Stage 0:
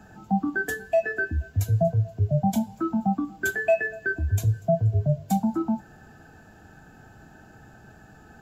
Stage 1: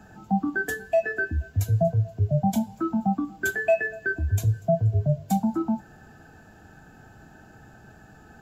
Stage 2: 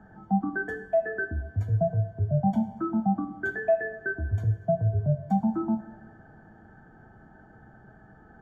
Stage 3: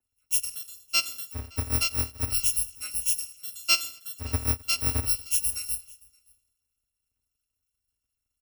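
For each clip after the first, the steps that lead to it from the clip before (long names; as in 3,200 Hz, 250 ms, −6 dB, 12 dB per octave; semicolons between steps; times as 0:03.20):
no processing that can be heard
Savitzky-Golay smoothing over 41 samples; convolution reverb, pre-delay 3 ms, DRR 8.5 dB; level −3 dB
samples in bit-reversed order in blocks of 256 samples; single-tap delay 573 ms −15.5 dB; multiband upward and downward expander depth 100%; level −4 dB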